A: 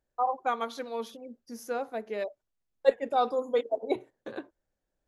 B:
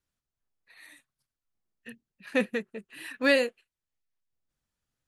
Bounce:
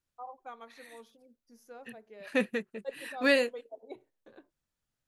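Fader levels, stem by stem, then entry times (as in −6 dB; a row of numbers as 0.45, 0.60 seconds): −16.5, −2.0 decibels; 0.00, 0.00 seconds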